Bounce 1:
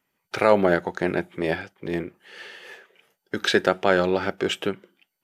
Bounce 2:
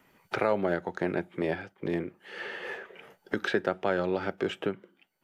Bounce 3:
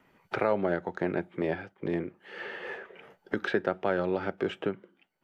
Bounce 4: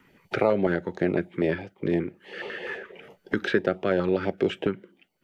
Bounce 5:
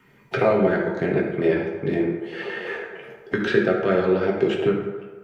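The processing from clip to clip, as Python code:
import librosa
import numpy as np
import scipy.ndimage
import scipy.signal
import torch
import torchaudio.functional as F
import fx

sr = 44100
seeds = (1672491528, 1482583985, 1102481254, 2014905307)

y1 = fx.high_shelf(x, sr, hz=2900.0, db=-9.0)
y1 = fx.band_squash(y1, sr, depth_pct=70)
y1 = F.gain(torch.from_numpy(y1), -6.0).numpy()
y2 = fx.high_shelf(y1, sr, hz=4900.0, db=-11.5)
y3 = fx.filter_held_notch(y2, sr, hz=12.0, low_hz=660.0, high_hz=1600.0)
y3 = F.gain(torch.from_numpy(y3), 6.5).numpy()
y4 = fx.rev_fdn(y3, sr, rt60_s=1.4, lf_ratio=0.75, hf_ratio=0.5, size_ms=44.0, drr_db=-2.5)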